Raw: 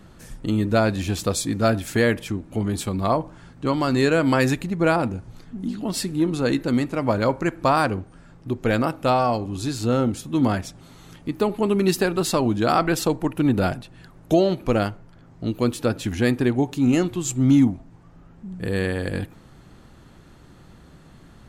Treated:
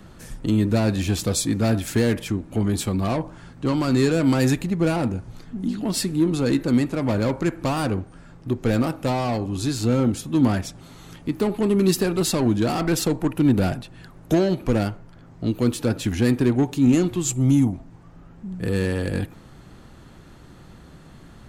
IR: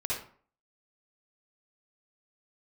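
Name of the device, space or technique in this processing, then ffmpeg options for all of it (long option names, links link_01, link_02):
one-band saturation: -filter_complex "[0:a]asettb=1/sr,asplit=3[link_01][link_02][link_03];[link_01]atrim=end=17.334[link_04];[link_02]atrim=start=17.33:end=17.73,asetpts=PTS-STARTPTS,afade=type=in:duration=0.004:curve=qsin,afade=type=out:start_time=0.396:duration=0.004:curve=qsin,equalizer=frequency=250:width_type=o:width=0.67:gain=-6,equalizer=frequency=1600:width_type=o:width=0.67:gain=-10,equalizer=frequency=4000:width_type=o:width=0.67:gain=-7,equalizer=frequency=10000:width_type=o:width=0.67:gain=7[link_05];[link_03]atrim=start=17.726[link_06];[link_04][link_05]acrossfade=duration=0.004:curve1=hsin:curve2=qsin[link_07];[link_07][link_06]acrossfade=duration=0.004:curve1=qsin:curve2=hsin,acrossover=split=370|4600[link_08][link_09][link_10];[link_09]asoftclip=type=tanh:threshold=-28dB[link_11];[link_08][link_11][link_10]amix=inputs=3:normalize=0,volume=2.5dB"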